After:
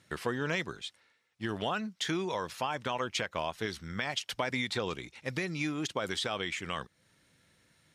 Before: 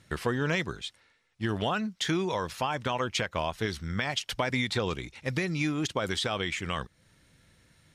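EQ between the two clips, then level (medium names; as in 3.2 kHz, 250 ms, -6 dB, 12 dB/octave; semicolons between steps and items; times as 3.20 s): high-pass 180 Hz 6 dB/octave; -3.0 dB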